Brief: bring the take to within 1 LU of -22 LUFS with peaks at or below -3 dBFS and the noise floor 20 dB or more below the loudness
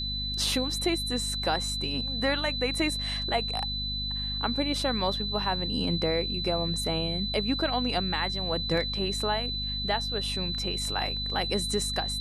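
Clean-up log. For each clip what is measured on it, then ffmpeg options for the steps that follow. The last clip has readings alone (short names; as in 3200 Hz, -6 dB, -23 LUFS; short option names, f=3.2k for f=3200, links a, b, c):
hum 50 Hz; harmonics up to 250 Hz; hum level -33 dBFS; steady tone 4000 Hz; tone level -31 dBFS; loudness -28.0 LUFS; peak -13.5 dBFS; loudness target -22.0 LUFS
-> -af "bandreject=f=50:t=h:w=4,bandreject=f=100:t=h:w=4,bandreject=f=150:t=h:w=4,bandreject=f=200:t=h:w=4,bandreject=f=250:t=h:w=4"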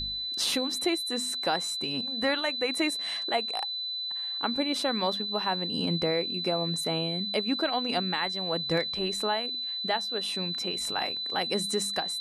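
hum none; steady tone 4000 Hz; tone level -31 dBFS
-> -af "bandreject=f=4k:w=30"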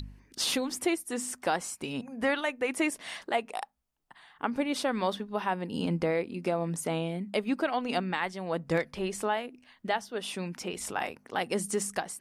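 steady tone none; loudness -31.5 LUFS; peak -15.5 dBFS; loudness target -22.0 LUFS
-> -af "volume=9.5dB"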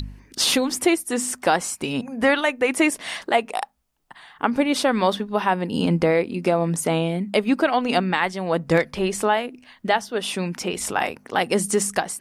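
loudness -22.0 LUFS; peak -6.0 dBFS; noise floor -55 dBFS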